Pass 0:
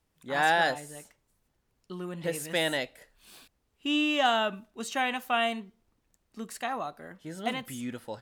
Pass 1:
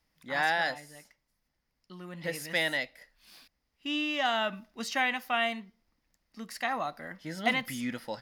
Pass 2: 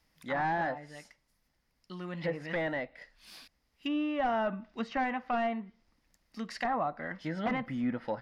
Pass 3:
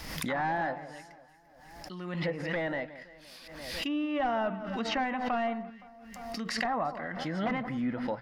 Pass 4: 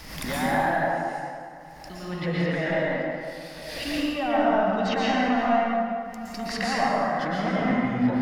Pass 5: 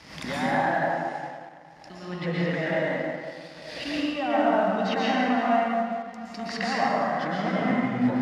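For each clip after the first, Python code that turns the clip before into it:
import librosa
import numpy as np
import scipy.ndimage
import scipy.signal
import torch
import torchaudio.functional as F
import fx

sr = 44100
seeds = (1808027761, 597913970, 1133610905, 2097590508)

y1 = fx.graphic_eq_31(x, sr, hz=(100, 400, 2000, 5000, 8000), db=(-12, -9, 8, 10, -8))
y1 = fx.rider(y1, sr, range_db=4, speed_s=0.5)
y1 = y1 * 10.0 ** (-1.5 / 20.0)
y2 = fx.fold_sine(y1, sr, drive_db=8, ceiling_db=-14.5)
y2 = fx.env_lowpass_down(y2, sr, base_hz=1200.0, full_db=-21.0)
y2 = y2 * 10.0 ** (-8.0 / 20.0)
y3 = fx.echo_alternate(y2, sr, ms=172, hz=1500.0, feedback_pct=58, wet_db=-13.5)
y3 = fx.pre_swell(y3, sr, db_per_s=43.0)
y4 = fx.rev_plate(y3, sr, seeds[0], rt60_s=2.1, hf_ratio=0.55, predelay_ms=105, drr_db=-6.5)
y5 = fx.law_mismatch(y4, sr, coded='A')
y5 = fx.bandpass_edges(y5, sr, low_hz=100.0, high_hz=6000.0)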